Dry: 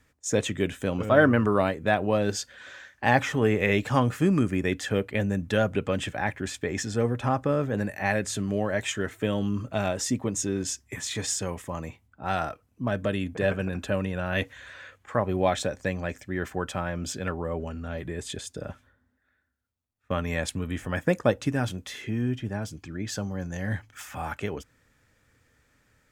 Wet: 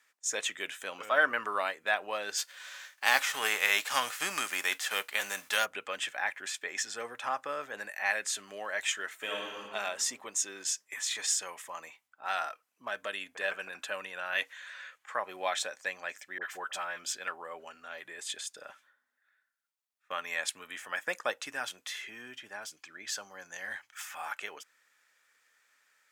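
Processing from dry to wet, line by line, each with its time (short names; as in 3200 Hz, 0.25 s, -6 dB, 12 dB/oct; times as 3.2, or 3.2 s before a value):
2.37–5.64 spectral whitening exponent 0.6
9.16–9.6 reverb throw, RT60 1.7 s, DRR -2 dB
16.38–17.04 dispersion highs, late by 45 ms, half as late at 1200 Hz
whole clip: HPF 1100 Hz 12 dB/oct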